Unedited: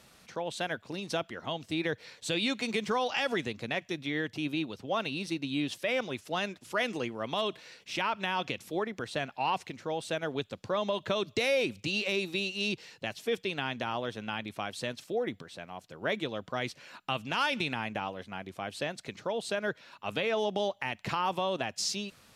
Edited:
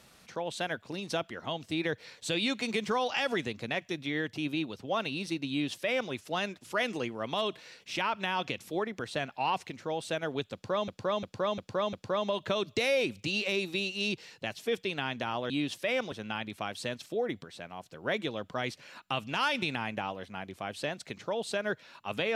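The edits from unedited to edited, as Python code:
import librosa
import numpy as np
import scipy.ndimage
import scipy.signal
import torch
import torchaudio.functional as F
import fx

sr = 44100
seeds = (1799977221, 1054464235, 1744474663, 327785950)

y = fx.edit(x, sr, fx.duplicate(start_s=5.5, length_s=0.62, to_s=14.1),
    fx.repeat(start_s=10.53, length_s=0.35, count=5), tone=tone)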